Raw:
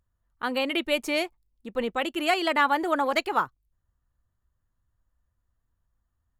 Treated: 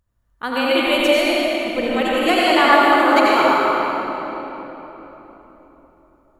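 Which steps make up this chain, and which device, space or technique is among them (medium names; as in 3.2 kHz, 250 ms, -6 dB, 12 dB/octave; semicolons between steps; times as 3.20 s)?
tunnel (flutter echo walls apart 7.9 m, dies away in 0.21 s; reverberation RT60 3.9 s, pre-delay 72 ms, DRR -6.5 dB); trim +3 dB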